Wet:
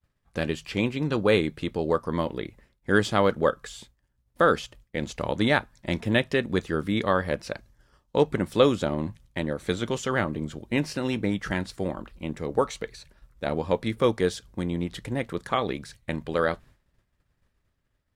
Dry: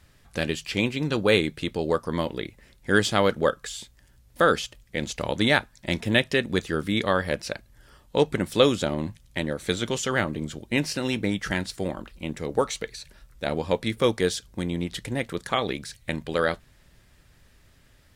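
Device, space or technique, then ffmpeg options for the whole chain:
behind a face mask: -filter_complex "[0:a]highshelf=frequency=2100:gain=-7.5,asettb=1/sr,asplit=3[link_01][link_02][link_03];[link_01]atrim=end=7.554[link_04];[link_02]atrim=start=7.55:end=8.17,asetpts=PTS-STARTPTS,afade=type=in:duration=0.004:curve=qsin,afade=type=out:start_time=0.616:duration=0.004:curve=qsin,equalizer=frequency=5800:width=1.7:gain=6.5[link_05];[link_03]atrim=start=8.166[link_06];[link_04][link_05]acrossfade=duration=0.004:curve1=hsin:curve2=qsin[link_07];[link_07][link_06]acrossfade=duration=0.004:curve1=qsin:curve2=hsin,agate=range=-33dB:threshold=-46dB:ratio=3:detection=peak,equalizer=frequency=1100:width=2.6:gain=3"

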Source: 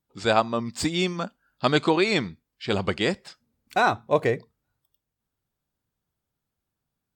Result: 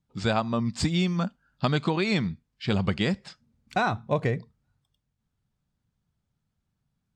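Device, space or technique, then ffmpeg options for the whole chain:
jukebox: -af "lowpass=7500,lowshelf=frequency=250:width_type=q:width=1.5:gain=7,acompressor=threshold=-21dB:ratio=4"

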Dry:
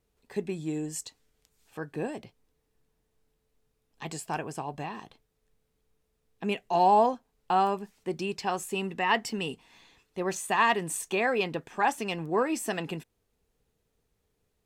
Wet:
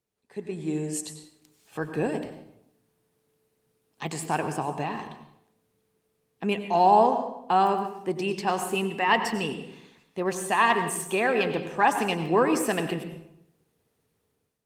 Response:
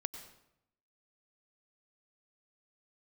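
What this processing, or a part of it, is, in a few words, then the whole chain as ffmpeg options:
far-field microphone of a smart speaker: -filter_complex "[0:a]asettb=1/sr,asplit=3[link_01][link_02][link_03];[link_01]atrim=end=2.174[link_04];[link_02]atrim=start=2.17:end=4.07,asetpts=PTS-STARTPTS,afade=type=in:duration=0.004:curve=qsin,afade=type=out:start_time=1.896:duration=0.004:curve=qsin,highshelf=frequency=4600:gain=2[link_05];[link_03]atrim=start=4.066[link_06];[link_04][link_05]acrossfade=duration=0.004:curve1=hsin:curve2=qsin[link_07];[link_07][link_06]acrossfade=duration=0.004:curve1=qsin:curve2=hsin[link_08];[1:a]atrim=start_sample=2205[link_09];[link_08][link_09]afir=irnorm=-1:irlink=0,highpass=frequency=92:width=0.5412,highpass=frequency=92:width=1.3066,dynaudnorm=framelen=260:gausssize=5:maxgain=13dB,volume=-6dB" -ar 48000 -c:a libopus -b:a 32k

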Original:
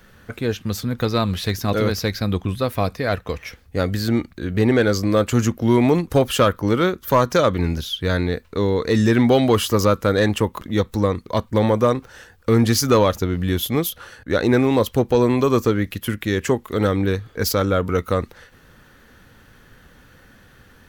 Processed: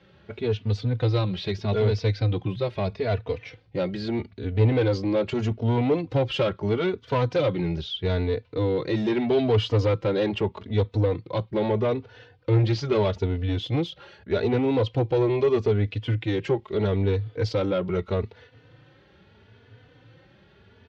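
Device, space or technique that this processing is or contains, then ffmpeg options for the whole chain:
barber-pole flanger into a guitar amplifier: -filter_complex "[0:a]asplit=2[link_01][link_02];[link_02]adelay=3.3,afreqshift=0.79[link_03];[link_01][link_03]amix=inputs=2:normalize=1,asoftclip=type=tanh:threshold=-17.5dB,highpass=93,equalizer=frequency=110:width_type=q:width=4:gain=9,equalizer=frequency=230:width_type=q:width=4:gain=-6,equalizer=frequency=410:width_type=q:width=4:gain=4,equalizer=frequency=1200:width_type=q:width=4:gain=-8,equalizer=frequency=1700:width_type=q:width=4:gain=-7,lowpass=frequency=4100:width=0.5412,lowpass=frequency=4100:width=1.3066,asettb=1/sr,asplit=3[link_04][link_05][link_06];[link_04]atrim=end=10.994[link_07];[link_05]atrim=start=10.99:end=12.95,asetpts=PTS-STARTPTS,afade=type=in:duration=0.004:curve=qsin,afade=type=out:start_time=1.956:duration=0.004:curve=qsin,lowpass=6000[link_08];[link_06]atrim=start=12.946[link_09];[link_07][link_08]acrossfade=duration=0.004:curve1=hsin:curve2=qsin[link_10];[link_10][link_09]acrossfade=duration=0.004:curve1=qsin:curve2=hsin"

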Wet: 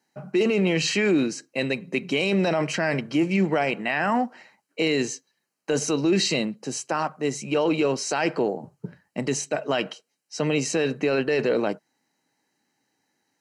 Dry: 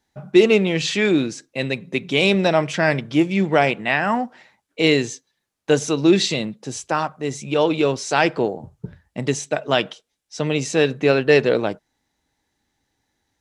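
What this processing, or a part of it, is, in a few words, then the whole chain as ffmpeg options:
PA system with an anti-feedback notch: -af "highpass=frequency=150:width=0.5412,highpass=frequency=150:width=1.3066,asuperstop=centerf=3500:order=8:qfactor=6.3,alimiter=limit=-14dB:level=0:latency=1:release=13"

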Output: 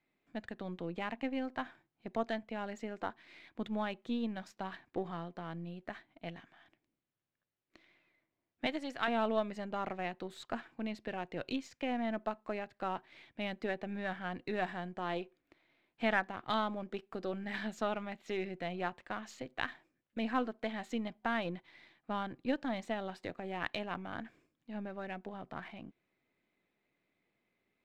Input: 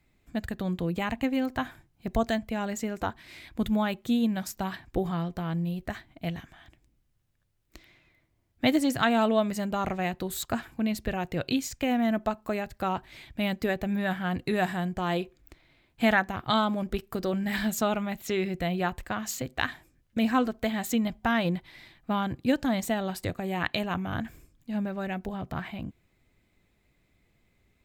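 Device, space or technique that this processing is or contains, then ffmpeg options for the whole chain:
crystal radio: -filter_complex "[0:a]asettb=1/sr,asplit=3[link_01][link_02][link_03];[link_01]atrim=end=8.664[link_04];[link_02]atrim=start=8.66:end=9.08,asetpts=PTS-STARTPTS,afade=type=in:duration=0.004:curve=qsin,afade=type=out:start_time=0.416:duration=0.004:curve=qsin,highpass=frequency=610:poles=1[link_05];[link_03]atrim=start=9.076[link_06];[link_04][link_05]acrossfade=duration=0.004:curve1=hsin:curve2=qsin[link_07];[link_07][link_06]acrossfade=duration=0.004:curve1=qsin:curve2=hsin,highpass=240,lowpass=3500,aeval=exprs='if(lt(val(0),0),0.708*val(0),val(0))':channel_layout=same,volume=-6.5dB"

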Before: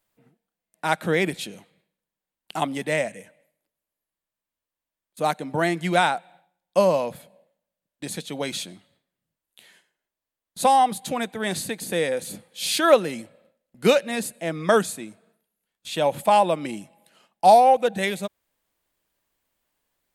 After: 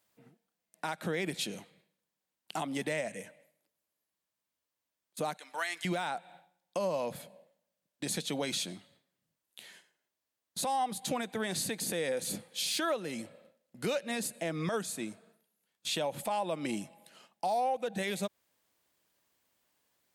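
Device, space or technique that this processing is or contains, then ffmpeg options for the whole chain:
broadcast voice chain: -filter_complex "[0:a]asettb=1/sr,asplit=3[link_01][link_02][link_03];[link_01]atrim=end=5.374[link_04];[link_02]atrim=start=5.37:end=5.85,asetpts=PTS-STARTPTS,afade=type=in:duration=0.004:curve=qsin,afade=type=out:start_time=0.476:duration=0.004:curve=qsin,highpass=1400[link_05];[link_03]atrim=start=5.846[link_06];[link_04][link_05]acrossfade=duration=0.004:curve1=hsin:curve2=qsin[link_07];[link_07][link_06]acrossfade=duration=0.004:curve1=qsin:curve2=hsin,highpass=90,deesser=0.45,acompressor=threshold=-29dB:ratio=4,equalizer=frequency=5500:width_type=o:width=1:gain=3.5,alimiter=limit=-23.5dB:level=0:latency=1:release=60"

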